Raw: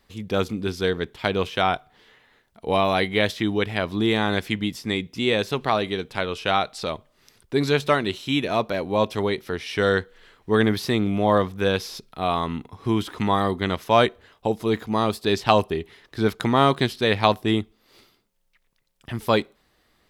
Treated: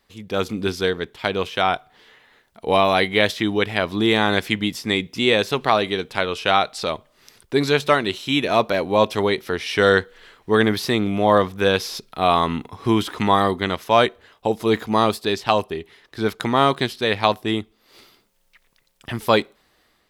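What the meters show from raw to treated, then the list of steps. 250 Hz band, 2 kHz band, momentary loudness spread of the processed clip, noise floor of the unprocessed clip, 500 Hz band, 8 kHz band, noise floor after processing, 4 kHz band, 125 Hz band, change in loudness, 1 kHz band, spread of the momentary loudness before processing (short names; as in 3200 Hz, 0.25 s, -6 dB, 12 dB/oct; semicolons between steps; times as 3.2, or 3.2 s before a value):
+1.5 dB, +4.0 dB, 9 LU, -67 dBFS, +3.0 dB, +4.5 dB, -64 dBFS, +4.0 dB, -0.5 dB, +3.0 dB, +3.5 dB, 9 LU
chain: low shelf 250 Hz -6 dB; AGC; gain -1 dB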